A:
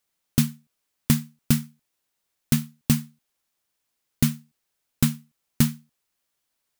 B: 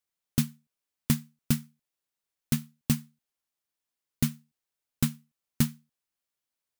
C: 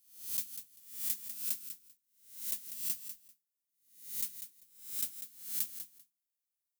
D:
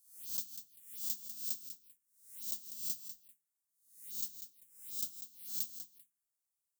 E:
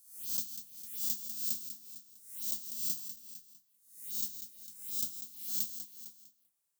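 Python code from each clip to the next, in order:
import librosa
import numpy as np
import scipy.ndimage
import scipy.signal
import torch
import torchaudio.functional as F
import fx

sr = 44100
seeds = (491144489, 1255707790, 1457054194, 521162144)

y1 = fx.upward_expand(x, sr, threshold_db=-26.0, expansion=1.5)
y1 = F.gain(torch.from_numpy(y1), -4.5).numpy()
y2 = fx.spec_swells(y1, sr, rise_s=0.56)
y2 = np.diff(y2, prepend=0.0)
y2 = fx.echo_feedback(y2, sr, ms=196, feedback_pct=16, wet_db=-10.0)
y2 = F.gain(torch.from_numpy(y2), -7.0).numpy()
y3 = fx.peak_eq(y2, sr, hz=8500.0, db=6.0, octaves=0.77)
y3 = fx.env_phaser(y3, sr, low_hz=390.0, high_hz=2100.0, full_db=-40.5)
y3 = F.gain(torch.from_numpy(y3), -1.0).numpy()
y4 = fx.hpss(y3, sr, part='harmonic', gain_db=9)
y4 = scipy.signal.sosfilt(scipy.signal.butter(2, 71.0, 'highpass', fs=sr, output='sos'), y4)
y4 = y4 + 10.0 ** (-15.0 / 20.0) * np.pad(y4, (int(454 * sr / 1000.0), 0))[:len(y4)]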